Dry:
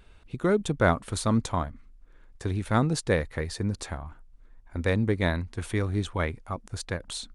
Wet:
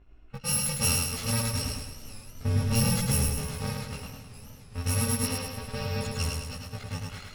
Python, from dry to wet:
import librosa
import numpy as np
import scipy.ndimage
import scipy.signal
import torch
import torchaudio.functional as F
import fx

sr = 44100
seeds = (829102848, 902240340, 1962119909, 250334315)

p1 = fx.bit_reversed(x, sr, seeds[0], block=128)
p2 = fx.env_lowpass(p1, sr, base_hz=1900.0, full_db=-19.0)
p3 = fx.low_shelf(p2, sr, hz=350.0, db=8.0, at=(1.64, 3.34))
p4 = fx.steep_lowpass(p3, sr, hz=5600.0, slope=96, at=(5.25, 6.01))
p5 = fx.quant_dither(p4, sr, seeds[1], bits=6, dither='none')
p6 = p4 + (p5 * librosa.db_to_amplitude(-10.0))
p7 = fx.chorus_voices(p6, sr, voices=2, hz=0.33, base_ms=18, depth_ms=4.5, mix_pct=50)
p8 = 10.0 ** (-18.5 / 20.0) * np.tanh(p7 / 10.0 ** (-18.5 / 20.0))
p9 = p8 + fx.echo_feedback(p8, sr, ms=105, feedback_pct=49, wet_db=-3, dry=0)
y = fx.echo_warbled(p9, sr, ms=407, feedback_pct=75, rate_hz=2.8, cents=72, wet_db=-20)